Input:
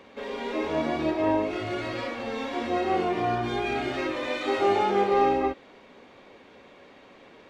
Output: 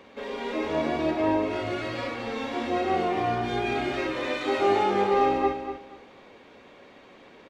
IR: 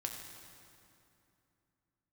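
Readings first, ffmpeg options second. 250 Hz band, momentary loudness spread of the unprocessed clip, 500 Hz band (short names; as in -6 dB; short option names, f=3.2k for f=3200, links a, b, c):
+0.5 dB, 9 LU, 0.0 dB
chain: -af "aecho=1:1:241|482|723:0.355|0.0781|0.0172"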